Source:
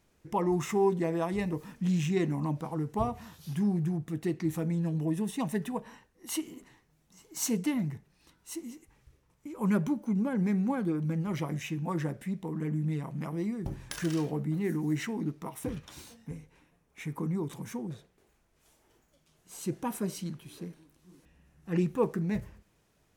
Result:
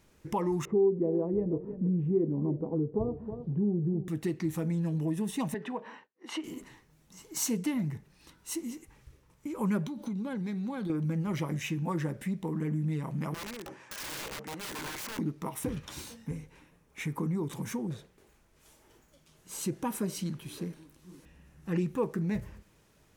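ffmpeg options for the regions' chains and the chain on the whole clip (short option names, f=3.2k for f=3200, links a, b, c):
-filter_complex "[0:a]asettb=1/sr,asplit=3[a][b][c];[a]atrim=end=0.654[d];[b]atrim=start=0.65:end=4.08,asetpts=PTS-STARTPTS,afade=t=in:d=0.004:c=qsin,afade=t=out:st=3.426:d=0.004:c=qsin,lowpass=f=440:t=q:w=2.7,aecho=1:1:316:0.15,atrim=end_sample=151263[e];[c]atrim=start=4.076[f];[d][e]acrossfade=d=0.004:c1=hsin:c2=qsin[g];[g][f]acrossfade=d=0.004:c1=qsin:c2=hsin,asettb=1/sr,asplit=3[h][i][j];[h]atrim=end=5.544[k];[i]atrim=start=5.54:end=6.44,asetpts=PTS-STARTPTS,afade=t=in:d=0.004:c=qsin,afade=t=out:st=0.896:d=0.004:c=qsin,agate=range=-33dB:threshold=-58dB:ratio=3:release=100:detection=peak,highpass=310,lowpass=3k,acompressor=threshold=-39dB:ratio=1.5:attack=3.2:release=140:knee=1:detection=peak[l];[j]atrim=start=6.436[m];[k][l]acrossfade=d=0.004:c1=hsin:c2=qsin[n];[n][m]acrossfade=d=0.004:c1=qsin:c2=hsin,asettb=1/sr,asplit=3[o][p][q];[o]atrim=end=9.854[r];[p]atrim=start=9.85:end=10.9,asetpts=PTS-STARTPTS,afade=t=in:d=0.004:c=qsin,afade=t=out:st=1.046:d=0.004:c=qsin,acompressor=threshold=-35dB:ratio=12:attack=3.2:release=140:knee=1:detection=peak,equalizer=f=3.8k:t=o:w=0.5:g=15[s];[q]atrim=start=10.896[t];[r][s]acrossfade=d=0.004:c1=hsin:c2=qsin[u];[u][t]acrossfade=d=0.004:c1=qsin:c2=hsin,asettb=1/sr,asplit=3[v][w][x];[v]atrim=end=13.344[y];[w]atrim=start=13.34:end=15.19,asetpts=PTS-STARTPTS,afade=t=in:d=0.004:c=qsin,afade=t=out:st=1.846:d=0.004:c=qsin,highpass=530,lowpass=5.8k,equalizer=f=3.9k:w=2.7:g=-8,aeval=exprs='(mod(100*val(0)+1,2)-1)/100':c=same[z];[x]atrim=start=15.186[aa];[y][z]acrossfade=d=0.004:c1=hsin:c2=qsin[ab];[ab][aa]acrossfade=d=0.004:c1=qsin:c2=hsin,bandreject=f=710:w=12,acompressor=threshold=-38dB:ratio=2,volume=5.5dB"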